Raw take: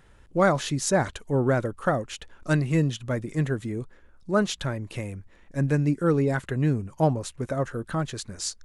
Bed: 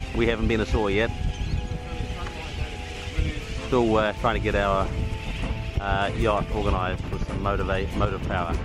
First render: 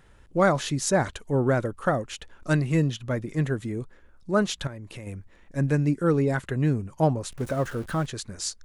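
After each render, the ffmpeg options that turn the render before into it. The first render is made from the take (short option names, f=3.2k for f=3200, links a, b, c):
-filter_complex "[0:a]asettb=1/sr,asplit=3[a][b][c];[a]atrim=end=2.864[d];[b]atrim=start=2.86:end=3.44,asetpts=PTS-STARTPTS,afade=t=in:d=0.004:c=qsin,afade=t=out:st=0.576:d=0.004:c=qsin,equalizer=f=8.4k:t=o:w=0.52:g=-5.5[e];[c]atrim=start=3.436[f];[d][e]acrossfade=d=0.004:c1=hsin:c2=qsin[g];[g][f]acrossfade=d=0.004:c1=qsin:c2=hsin,asettb=1/sr,asplit=3[h][i][j];[h]atrim=end=4.674[k];[i]atrim=start=4.67:end=5.07,asetpts=PTS-STARTPTS,afade=t=in:d=0.004:c=qsin,afade=t=out:st=0.396:d=0.004:c=qsin,acompressor=threshold=-38dB:ratio=3:attack=3.2:release=140:knee=1:detection=peak[l];[j]atrim=start=5.066[m];[k][l]acrossfade=d=0.004:c1=hsin:c2=qsin[n];[n][m]acrossfade=d=0.004:c1=qsin:c2=hsin,asettb=1/sr,asplit=3[o][p][q];[o]atrim=end=7.314[r];[p]atrim=start=7.31:end=8.06,asetpts=PTS-STARTPTS,afade=t=in:d=0.004:c=qsin,afade=t=out:st=0.746:d=0.004:c=qsin,aeval=exprs='val(0)+0.5*0.0112*sgn(val(0))':c=same[s];[q]atrim=start=8.056[t];[r][s]acrossfade=d=0.004:c1=hsin:c2=qsin[u];[u][t]acrossfade=d=0.004:c1=qsin:c2=hsin"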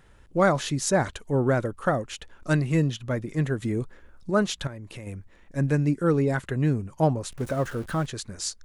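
-filter_complex "[0:a]asplit=3[a][b][c];[a]atrim=end=3.622[d];[b]atrim=start=3.618:end=4.302,asetpts=PTS-STARTPTS,volume=4dB[e];[c]atrim=start=4.298[f];[d][e]acrossfade=d=0.004:c1=hsin:c2=hsin[g];[g][f]acrossfade=d=0.004:c1=hsin:c2=hsin"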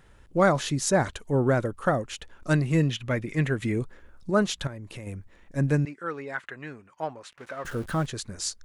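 -filter_complex "[0:a]asettb=1/sr,asplit=3[a][b][c];[a]atrim=end=2.804[d];[b]atrim=start=2.8:end=3.79,asetpts=PTS-STARTPTS,afade=t=in:d=0.004:c=qsin,afade=t=out:st=0.986:d=0.004:c=qsin,equalizer=f=2.3k:w=1.5:g=9[e];[c]atrim=start=3.786[f];[d][e]acrossfade=d=0.004:c1=hsin:c2=qsin[g];[g][f]acrossfade=d=0.004:c1=qsin:c2=hsin,asettb=1/sr,asplit=3[h][i][j];[h]atrim=end=5.854[k];[i]atrim=start=5.85:end=7.65,asetpts=PTS-STARTPTS,afade=t=in:d=0.004:c=qsin,afade=t=out:st=1.796:d=0.004:c=qsin,bandpass=f=1.8k:t=q:w=1[l];[j]atrim=start=7.646[m];[k][l]acrossfade=d=0.004:c1=hsin:c2=qsin[n];[n][m]acrossfade=d=0.004:c1=qsin:c2=hsin"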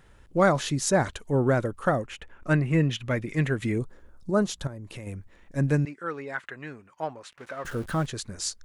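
-filter_complex "[0:a]asettb=1/sr,asplit=3[a][b][c];[a]atrim=end=2.064[d];[b]atrim=start=2.06:end=2.91,asetpts=PTS-STARTPTS,afade=t=in:d=0.004:c=qsin,afade=t=out:st=0.846:d=0.004:c=qsin,highshelf=f=3.1k:t=q:w=1.5:g=-7.5[e];[c]atrim=start=2.906[f];[d][e]acrossfade=d=0.004:c1=hsin:c2=qsin[g];[g][f]acrossfade=d=0.004:c1=qsin:c2=hsin,asettb=1/sr,asplit=3[h][i][j];[h]atrim=end=3.784[k];[i]atrim=start=3.78:end=4.85,asetpts=PTS-STARTPTS,afade=t=in:d=0.004:c=qsin,afade=t=out:st=1.066:d=0.004:c=qsin,equalizer=f=2.4k:t=o:w=1.5:g=-9[l];[j]atrim=start=4.846[m];[k][l]acrossfade=d=0.004:c1=hsin:c2=qsin[n];[n][m]acrossfade=d=0.004:c1=qsin:c2=hsin"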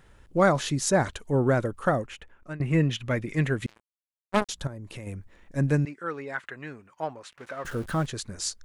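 -filter_complex "[0:a]asettb=1/sr,asplit=3[a][b][c];[a]atrim=end=3.664[d];[b]atrim=start=3.66:end=4.49,asetpts=PTS-STARTPTS,afade=t=in:d=0.004:c=qsin,afade=t=out:st=0.826:d=0.004:c=qsin,acrusher=bits=2:mix=0:aa=0.5[e];[c]atrim=start=4.486[f];[d][e]acrossfade=d=0.004:c1=hsin:c2=qsin[g];[g][f]acrossfade=d=0.004:c1=qsin:c2=hsin,asplit=2[h][i];[h]atrim=end=2.6,asetpts=PTS-STARTPTS,afade=t=out:st=2.01:d=0.59:silence=0.0891251[j];[i]atrim=start=2.6,asetpts=PTS-STARTPTS,afade=t=in:d=0.004:c=hsin:silence=0.0891251[k];[j][k]concat=n=2:v=0:a=1"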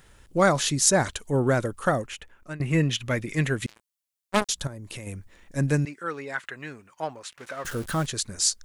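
-af "highshelf=f=3.2k:g=10.5"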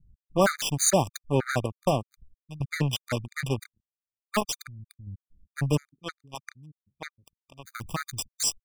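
-filter_complex "[0:a]acrossover=split=190[a][b];[b]acrusher=bits=3:mix=0:aa=0.5[c];[a][c]amix=inputs=2:normalize=0,afftfilt=real='re*gt(sin(2*PI*3.2*pts/sr)*(1-2*mod(floor(b*sr/1024/1200),2)),0)':imag='im*gt(sin(2*PI*3.2*pts/sr)*(1-2*mod(floor(b*sr/1024/1200),2)),0)':win_size=1024:overlap=0.75"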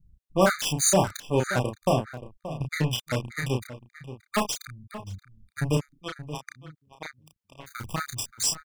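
-filter_complex "[0:a]asplit=2[a][b];[b]adelay=32,volume=-4.5dB[c];[a][c]amix=inputs=2:normalize=0,asplit=2[d][e];[e]adelay=577.3,volume=-13dB,highshelf=f=4k:g=-13[f];[d][f]amix=inputs=2:normalize=0"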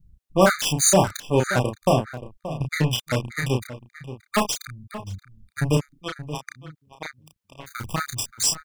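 -af "volume=4dB"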